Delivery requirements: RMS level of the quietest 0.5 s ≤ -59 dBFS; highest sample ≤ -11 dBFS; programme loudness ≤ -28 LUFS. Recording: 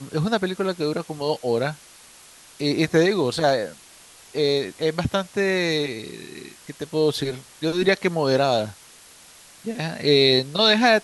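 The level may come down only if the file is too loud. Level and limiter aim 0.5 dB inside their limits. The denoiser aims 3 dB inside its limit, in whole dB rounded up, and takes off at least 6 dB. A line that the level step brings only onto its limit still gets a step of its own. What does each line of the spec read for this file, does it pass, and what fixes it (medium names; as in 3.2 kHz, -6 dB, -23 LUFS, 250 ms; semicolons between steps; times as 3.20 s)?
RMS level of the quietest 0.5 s -48 dBFS: fail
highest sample -4.0 dBFS: fail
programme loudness -22.0 LUFS: fail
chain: noise reduction 8 dB, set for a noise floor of -48 dBFS; trim -6.5 dB; peak limiter -11.5 dBFS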